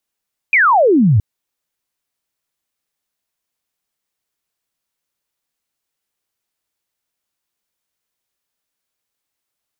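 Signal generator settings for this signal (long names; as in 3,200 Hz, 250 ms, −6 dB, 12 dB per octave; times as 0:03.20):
single falling chirp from 2,500 Hz, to 93 Hz, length 0.67 s sine, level −8 dB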